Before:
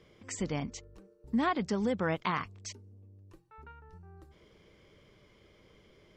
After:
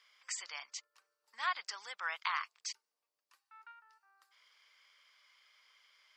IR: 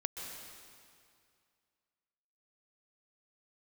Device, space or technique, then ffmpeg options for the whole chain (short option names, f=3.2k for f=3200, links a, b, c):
headphones lying on a table: -af "highpass=f=1.1k:w=0.5412,highpass=f=1.1k:w=1.3066,equalizer=f=4.8k:t=o:w=0.21:g=7.5"